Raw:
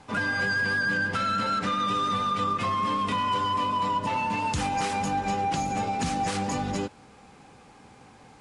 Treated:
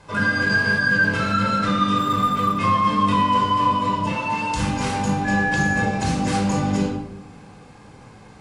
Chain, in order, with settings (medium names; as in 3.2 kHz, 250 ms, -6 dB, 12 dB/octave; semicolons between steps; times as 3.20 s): 4.09–4.57 s: bass shelf 220 Hz -11.5 dB; 5.24–5.82 s: whistle 1.7 kHz -28 dBFS; reverberation RT60 0.80 s, pre-delay 20 ms, DRR 0 dB; 0.50–1.32 s: mobile phone buzz -35 dBFS; 1.98–2.58 s: decimation joined by straight lines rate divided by 4×